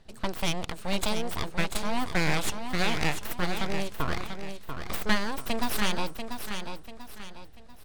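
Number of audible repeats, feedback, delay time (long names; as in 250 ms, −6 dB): 4, 37%, 690 ms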